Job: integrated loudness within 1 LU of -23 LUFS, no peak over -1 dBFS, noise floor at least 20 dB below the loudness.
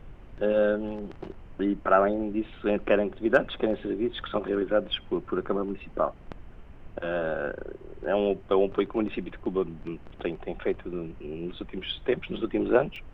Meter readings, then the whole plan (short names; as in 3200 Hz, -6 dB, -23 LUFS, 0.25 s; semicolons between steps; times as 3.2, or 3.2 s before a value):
dropouts 1; longest dropout 3.1 ms; noise floor -47 dBFS; noise floor target -49 dBFS; loudness -28.5 LUFS; peak -7.5 dBFS; loudness target -23.0 LUFS
-> interpolate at 12.96, 3.1 ms; noise print and reduce 6 dB; gain +5.5 dB